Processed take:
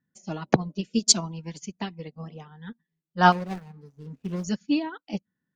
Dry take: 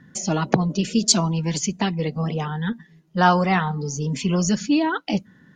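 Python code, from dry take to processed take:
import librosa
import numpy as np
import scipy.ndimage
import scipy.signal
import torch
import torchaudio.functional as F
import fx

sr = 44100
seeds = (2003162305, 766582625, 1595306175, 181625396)

y = fx.median_filter(x, sr, points=41, at=(3.32, 4.44))
y = fx.upward_expand(y, sr, threshold_db=-34.0, expansion=2.5)
y = y * librosa.db_to_amplitude(1.0)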